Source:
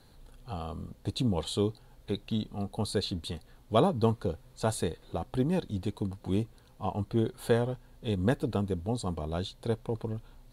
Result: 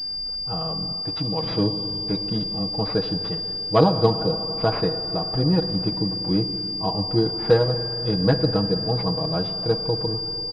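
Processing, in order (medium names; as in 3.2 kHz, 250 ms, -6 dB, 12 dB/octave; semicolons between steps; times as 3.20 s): comb 6.3 ms, depth 90%; spring tank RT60 3.5 s, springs 49/57 ms, chirp 20 ms, DRR 8.5 dB; hum 60 Hz, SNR 30 dB; 1.02–1.43 s: bass shelf 460 Hz -8 dB; class-D stage that switches slowly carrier 4.8 kHz; trim +5 dB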